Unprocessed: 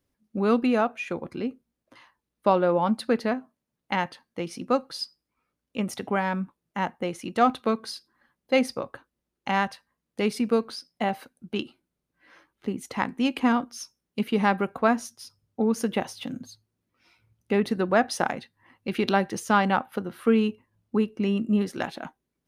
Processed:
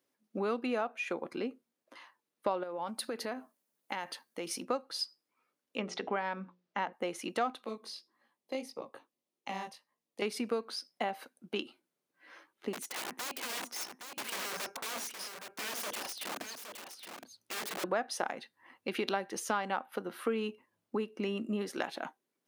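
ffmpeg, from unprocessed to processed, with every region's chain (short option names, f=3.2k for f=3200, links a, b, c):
-filter_complex "[0:a]asettb=1/sr,asplit=3[a][b][c];[a]atrim=end=2.634[d];[b]atrim=start=2.63:end=4.63,asetpts=PTS-STARTPTS,afade=t=in:d=0.004:c=qsin,afade=t=out:st=1.996:d=0.004:c=qsin,highshelf=f=7k:g=12,acompressor=threshold=-31dB:ratio=5:attack=3.2:release=140:knee=1:detection=peak[e];[c]atrim=start=4.626[f];[d][e]acrossfade=d=0.004:c1=hsin:c2=qsin[g];[g][f]acrossfade=d=0.004:c1=qsin:c2=hsin,asettb=1/sr,asplit=3[h][i][j];[h]atrim=end=5.784[k];[i]atrim=start=5.78:end=6.93,asetpts=PTS-STARTPTS,afade=t=in:d=0.004:c=qsin,afade=t=out:st=1.146:d=0.004:c=qsin,lowpass=f=5.6k:w=0.5412,lowpass=f=5.6k:w=1.3066,bandreject=f=60:t=h:w=6,bandreject=f=120:t=h:w=6,bandreject=f=180:t=h:w=6,bandreject=f=240:t=h:w=6,bandreject=f=300:t=h:w=6,bandreject=f=360:t=h:w=6,bandreject=f=420:t=h:w=6,bandreject=f=480:t=h:w=6,bandreject=f=540:t=h:w=6[l];[j]atrim=start=6.926[m];[k][l]acrossfade=d=0.004:c1=hsin:c2=qsin[n];[n][m]acrossfade=d=0.004:c1=qsin:c2=hsin,asettb=1/sr,asplit=3[o][p][q];[o]atrim=end=7.644[r];[p]atrim=start=7.64:end=10.22,asetpts=PTS-STARTPTS,afade=t=in:d=0.004:c=qsin,afade=t=out:st=2.576:d=0.004:c=qsin,equalizer=f=1.5k:t=o:w=0.33:g=-13,acrossover=split=320|5100[s][t][u];[s]acompressor=threshold=-34dB:ratio=4[v];[t]acompressor=threshold=-36dB:ratio=4[w];[u]acompressor=threshold=-51dB:ratio=4[x];[v][w][x]amix=inputs=3:normalize=0,flanger=delay=17:depth=6.1:speed=1.7[y];[q]atrim=start=10.216[z];[r][y]acrossfade=d=0.004:c1=hsin:c2=qsin[aa];[aa][z]acrossfade=d=0.004:c1=qsin:c2=hsin,asettb=1/sr,asplit=3[ab][ac][ad];[ab]atrim=end=12.734[ae];[ac]atrim=start=12.73:end=17.84,asetpts=PTS-STARTPTS,afade=t=in:d=0.004:c=qsin,afade=t=out:st=5.106:d=0.004:c=qsin,acompressor=threshold=-25dB:ratio=16:attack=3.2:release=140:knee=1:detection=peak,aeval=exprs='(mod(44.7*val(0)+1,2)-1)/44.7':c=same,aecho=1:1:817:0.398,atrim=end_sample=225351[af];[ad]atrim=start=17.836[ag];[ae][af]acrossfade=d=0.004:c1=hsin:c2=qsin[ah];[ah][ag]acrossfade=d=0.004:c1=qsin:c2=hsin,highpass=330,acompressor=threshold=-32dB:ratio=3"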